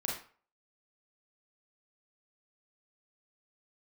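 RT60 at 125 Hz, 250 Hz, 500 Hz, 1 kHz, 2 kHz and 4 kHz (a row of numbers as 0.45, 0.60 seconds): 0.40, 0.35, 0.40, 0.45, 0.40, 0.30 seconds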